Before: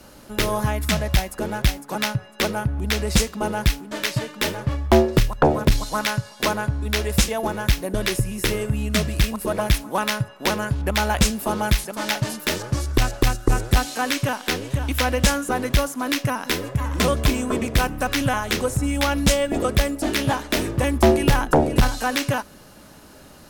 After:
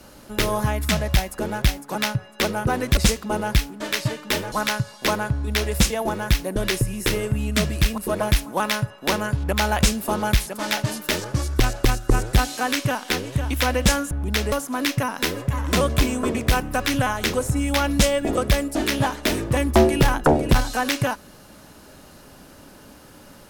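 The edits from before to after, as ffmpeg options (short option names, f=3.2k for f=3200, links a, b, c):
-filter_complex "[0:a]asplit=6[a][b][c][d][e][f];[a]atrim=end=2.672[g];[b]atrim=start=15.488:end=15.792[h];[c]atrim=start=3.078:end=4.632[i];[d]atrim=start=5.898:end=15.492[j];[e]atrim=start=2.668:end=3.082[k];[f]atrim=start=15.788[l];[g][h]acrossfade=d=0.004:c1=hsin:c2=hsin[m];[m][i]acrossfade=d=0.004:c1=hsin:c2=hsin[n];[n][j]acrossfade=d=0.004:c1=hsin:c2=hsin[o];[o][k]acrossfade=d=0.004:c1=hsin:c2=hsin[p];[p][l]acrossfade=d=0.004:c1=hsin:c2=hsin"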